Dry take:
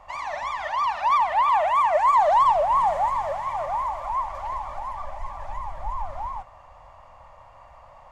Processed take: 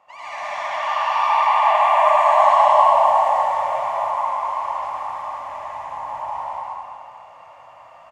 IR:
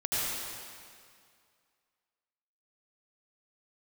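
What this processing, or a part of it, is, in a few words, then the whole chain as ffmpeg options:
stadium PA: -filter_complex "[0:a]highpass=220,equalizer=f=2700:t=o:w=0.28:g=5.5,aecho=1:1:186.6|271.1:0.891|0.282[s0];[1:a]atrim=start_sample=2205[s1];[s0][s1]afir=irnorm=-1:irlink=0,volume=0.447"

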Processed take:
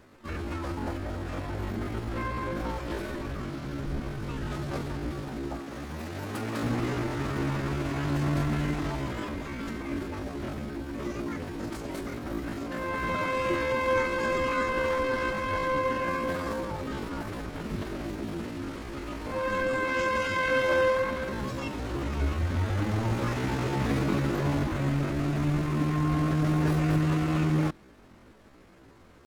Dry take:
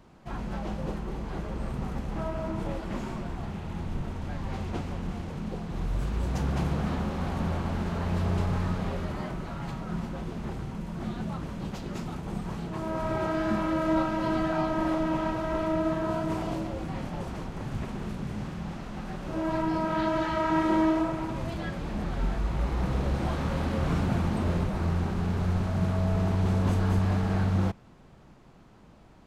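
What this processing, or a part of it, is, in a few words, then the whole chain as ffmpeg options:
chipmunk voice: -filter_complex "[0:a]asplit=3[s0][s1][s2];[s0]afade=t=out:st=5.6:d=0.02[s3];[s1]highpass=f=190:p=1,afade=t=in:st=5.6:d=0.02,afade=t=out:st=6.63:d=0.02[s4];[s2]afade=t=in:st=6.63:d=0.02[s5];[s3][s4][s5]amix=inputs=3:normalize=0,asetrate=72056,aresample=44100,atempo=0.612027"

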